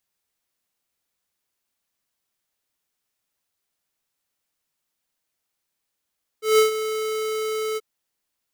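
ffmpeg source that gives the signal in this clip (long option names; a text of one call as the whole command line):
ffmpeg -f lavfi -i "aevalsrc='0.2*(2*lt(mod(435*t,1),0.5)-1)':duration=1.382:sample_rate=44100,afade=type=in:duration=0.164,afade=type=out:start_time=0.164:duration=0.121:silence=0.251,afade=type=out:start_time=1.35:duration=0.032" out.wav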